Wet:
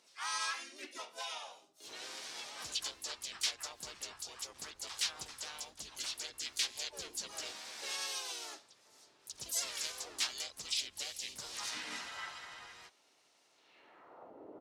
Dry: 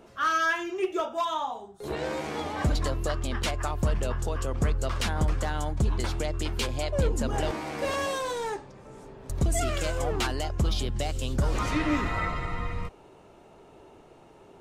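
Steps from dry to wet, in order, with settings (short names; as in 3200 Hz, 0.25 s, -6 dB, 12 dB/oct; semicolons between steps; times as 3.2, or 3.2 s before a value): band-pass sweep 5500 Hz -> 500 Hz, 13.53–14.36; harmoniser -7 st -7 dB, -4 st -3 dB, +7 st -6 dB; gain +2 dB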